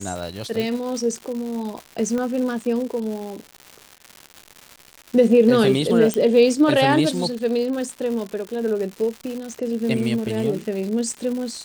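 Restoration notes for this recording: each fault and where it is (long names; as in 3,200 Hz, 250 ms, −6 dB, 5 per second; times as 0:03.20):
surface crackle 260 per second −29 dBFS
0:00.60: click
0:02.18: click −15 dBFS
0:06.14: click −8 dBFS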